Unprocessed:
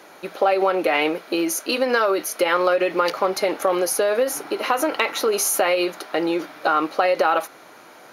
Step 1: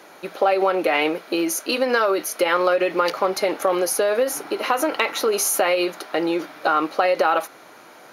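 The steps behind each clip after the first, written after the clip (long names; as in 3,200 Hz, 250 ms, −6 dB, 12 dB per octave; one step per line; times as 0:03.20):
high-pass filter 56 Hz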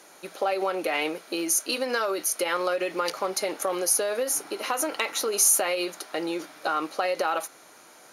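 parametric band 8,300 Hz +13.5 dB 1.4 octaves
level −8 dB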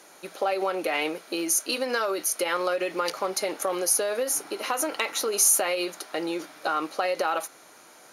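no processing that can be heard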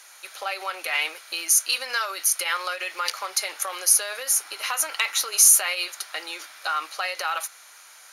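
high-pass filter 1,400 Hz 12 dB per octave
level +5.5 dB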